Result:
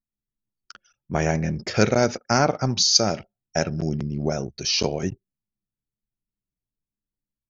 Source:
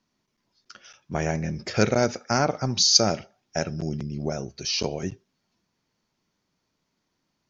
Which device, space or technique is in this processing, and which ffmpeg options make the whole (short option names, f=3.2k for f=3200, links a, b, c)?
voice memo with heavy noise removal: -af "anlmdn=0.158,dynaudnorm=f=150:g=3:m=4dB"